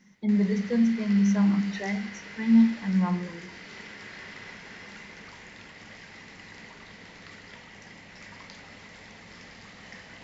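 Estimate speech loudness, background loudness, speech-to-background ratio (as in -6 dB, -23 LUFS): -24.5 LUFS, -43.5 LUFS, 19.0 dB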